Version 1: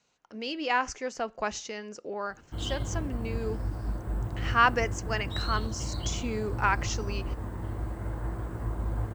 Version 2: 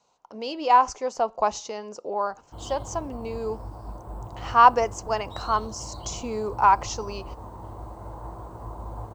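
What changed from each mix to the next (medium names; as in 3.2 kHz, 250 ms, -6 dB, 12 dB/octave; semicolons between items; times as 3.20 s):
background -6.5 dB; master: add FFT filter 280 Hz 0 dB, 970 Hz +13 dB, 1.7 kHz -7 dB, 4.3 kHz +2 dB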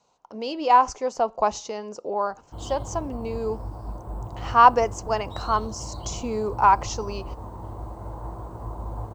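master: add bass shelf 470 Hz +4 dB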